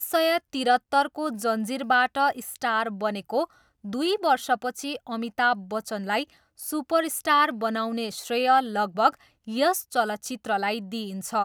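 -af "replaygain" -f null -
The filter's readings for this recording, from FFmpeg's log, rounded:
track_gain = +4.3 dB
track_peak = 0.389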